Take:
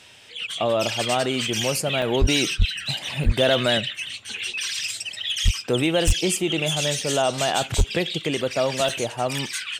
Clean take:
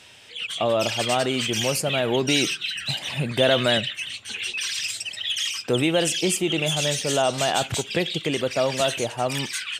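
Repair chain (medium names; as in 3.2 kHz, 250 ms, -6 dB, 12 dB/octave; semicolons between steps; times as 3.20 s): clip repair -10.5 dBFS; de-plosive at 2.20/2.58/3.25/5.44/6.06/7.77 s; interpolate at 2.02/3.24/8.89 s, 3.2 ms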